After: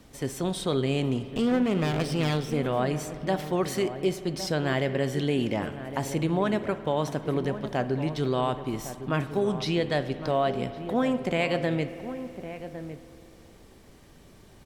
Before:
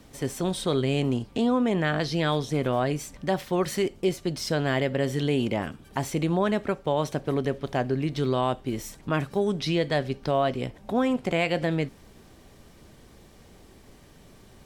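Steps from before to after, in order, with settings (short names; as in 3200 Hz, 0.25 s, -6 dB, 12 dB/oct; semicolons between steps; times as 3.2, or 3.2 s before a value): 1.29–2.54 minimum comb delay 0.36 ms; outdoor echo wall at 190 m, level -11 dB; spring tank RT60 3 s, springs 52 ms, chirp 45 ms, DRR 12.5 dB; gain -1.5 dB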